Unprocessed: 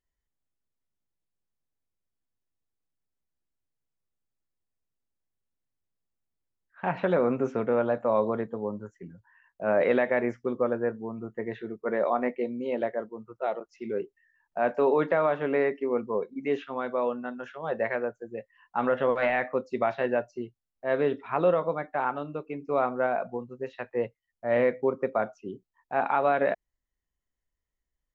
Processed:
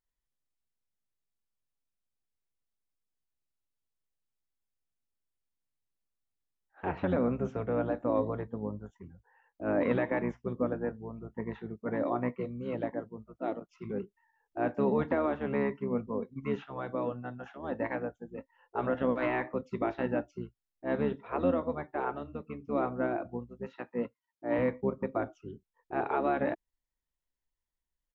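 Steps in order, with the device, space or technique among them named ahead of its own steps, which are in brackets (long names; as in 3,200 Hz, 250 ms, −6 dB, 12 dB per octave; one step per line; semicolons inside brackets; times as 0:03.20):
octave pedal (pitch-shifted copies added −12 semitones −2 dB)
0:23.67–0:24.59: high-pass filter 150 Hz 12 dB per octave
level −7 dB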